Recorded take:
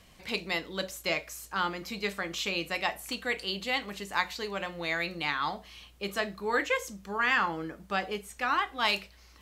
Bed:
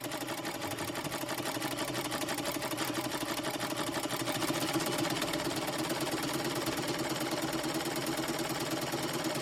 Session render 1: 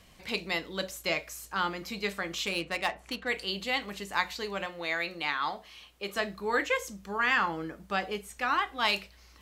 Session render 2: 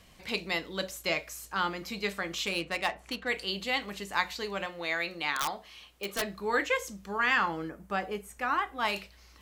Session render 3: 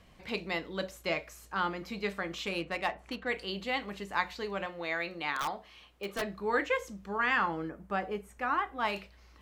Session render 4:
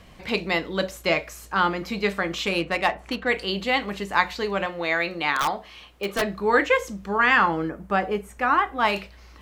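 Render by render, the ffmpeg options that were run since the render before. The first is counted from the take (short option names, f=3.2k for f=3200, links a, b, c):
-filter_complex "[0:a]asettb=1/sr,asplit=3[a][b][c];[a]atrim=end=2.464[d];[b]atrim=start=2.46:end=3.28,asetpts=PTS-STARTPTS,afade=t=in:d=0.004:c=qsin,afade=t=out:st=0.816:d=0.004:c=qsin,adynamicsmooth=sensitivity=7:basefreq=2.5k[e];[c]atrim=start=3.276[f];[d][e]acrossfade=d=0.004:c1=hsin:c2=qsin[g];[g][f]acrossfade=d=0.004:c1=qsin:c2=hsin,asettb=1/sr,asplit=3[h][i][j];[h]atrim=end=4.664[k];[i]atrim=start=4.66:end=6.16,asetpts=PTS-STARTPTS,afade=t=in:d=0.004:c=qsin,afade=t=out:st=1.496:d=0.004:c=qsin,bass=f=250:g=-9,treble=f=4k:g=-2[l];[j]atrim=start=6.156[m];[k][l]acrossfade=d=0.004:c1=hsin:c2=qsin[n];[n][m]acrossfade=d=0.004:c1=qsin:c2=hsin"
-filter_complex "[0:a]asettb=1/sr,asplit=3[a][b][c];[a]atrim=end=5.364[d];[b]atrim=start=5.36:end=6.22,asetpts=PTS-STARTPTS,afade=t=in:d=0.004:c=qsin,afade=t=out:st=0.856:d=0.004:c=qsin,aeval=exprs='(mod(13.3*val(0)+1,2)-1)/13.3':c=same[e];[c]atrim=start=6.216[f];[d][e]acrossfade=d=0.004:c1=hsin:c2=qsin[g];[g][f]acrossfade=d=0.004:c1=qsin:c2=hsin,asettb=1/sr,asplit=3[h][i][j];[h]atrim=end=7.694[k];[i]atrim=start=7.69:end=8.96,asetpts=PTS-STARTPTS,afade=t=in:d=0.004:c=qsin,afade=t=out:st=1.266:d=0.004:c=qsin,equalizer=f=4k:w=0.92:g=-8.5[l];[j]atrim=start=8.956[m];[k][l]acrossfade=d=0.004:c1=hsin:c2=qsin[n];[n][m]acrossfade=d=0.004:c1=qsin:c2=hsin"
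-af "highshelf=f=3.4k:g=-11.5"
-af "volume=10dB"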